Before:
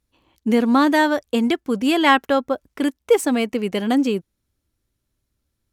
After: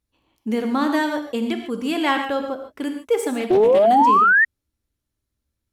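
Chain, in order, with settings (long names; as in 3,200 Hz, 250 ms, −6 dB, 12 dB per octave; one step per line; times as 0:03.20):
reverb whose tail is shaped and stops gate 170 ms flat, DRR 5 dB
0:03.50–0:04.45: sound drawn into the spectrogram rise 350–1,900 Hz −8 dBFS
0:03.40–0:03.86: highs frequency-modulated by the lows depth 0.28 ms
level −6 dB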